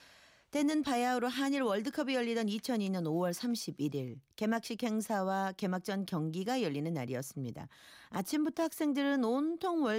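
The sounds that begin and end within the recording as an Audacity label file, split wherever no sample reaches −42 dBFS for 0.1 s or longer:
0.530000	4.140000	sound
4.380000	7.660000	sound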